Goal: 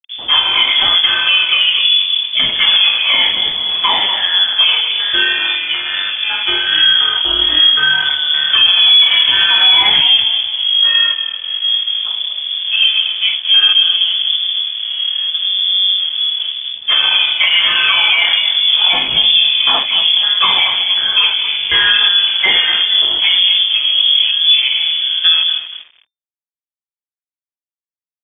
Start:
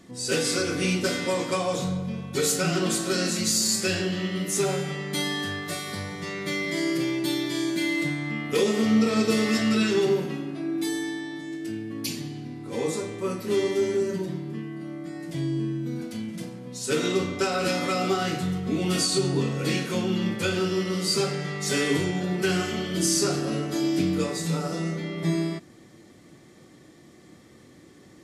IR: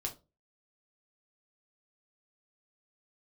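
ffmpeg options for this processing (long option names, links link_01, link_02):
-filter_complex "[0:a]afftfilt=real='re*pow(10,11/40*sin(2*PI*(0.82*log(max(b,1)*sr/1024/100)/log(2)-(1.2)*(pts-256)/sr)))':imag='im*pow(10,11/40*sin(2*PI*(0.82*log(max(b,1)*sr/1024/100)/log(2)-(1.2)*(pts-256)/sr)))':win_size=1024:overlap=0.75,afwtdn=0.0224,equalizer=frequency=1000:width_type=o:width=0.23:gain=13,asplit=2[link_01][link_02];[link_02]acompressor=threshold=-32dB:ratio=6,volume=-2dB[link_03];[link_01][link_03]amix=inputs=2:normalize=0,flanger=delay=7.9:depth=7.9:regen=-62:speed=0.79:shape=triangular,asplit=4[link_04][link_05][link_06][link_07];[link_05]adelay=237,afreqshift=39,volume=-11.5dB[link_08];[link_06]adelay=474,afreqshift=78,volume=-21.1dB[link_09];[link_07]adelay=711,afreqshift=117,volume=-30.8dB[link_10];[link_04][link_08][link_09][link_10]amix=inputs=4:normalize=0,aeval=exprs='sgn(val(0))*max(abs(val(0))-0.00501,0)':channel_layout=same,lowpass=frequency=3100:width_type=q:width=0.5098,lowpass=frequency=3100:width_type=q:width=0.6013,lowpass=frequency=3100:width_type=q:width=0.9,lowpass=frequency=3100:width_type=q:width=2.563,afreqshift=-3600,alimiter=level_in=17dB:limit=-1dB:release=50:level=0:latency=1,volume=-1dB"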